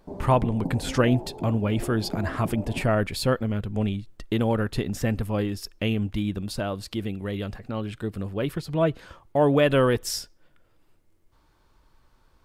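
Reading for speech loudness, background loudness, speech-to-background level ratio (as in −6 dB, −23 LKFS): −26.0 LKFS, −36.5 LKFS, 10.5 dB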